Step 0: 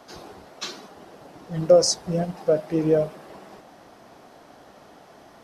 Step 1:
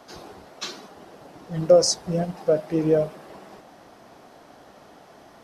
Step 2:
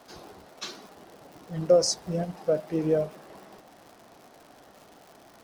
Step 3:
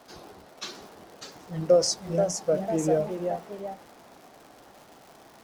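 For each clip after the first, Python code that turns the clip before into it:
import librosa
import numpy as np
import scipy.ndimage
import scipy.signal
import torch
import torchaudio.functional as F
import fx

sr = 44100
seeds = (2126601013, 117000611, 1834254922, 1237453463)

y1 = x
y2 = fx.dmg_crackle(y1, sr, seeds[0], per_s=170.0, level_db=-37.0)
y2 = y2 * librosa.db_to_amplitude(-4.5)
y3 = fx.echo_pitch(y2, sr, ms=666, semitones=2, count=2, db_per_echo=-6.0)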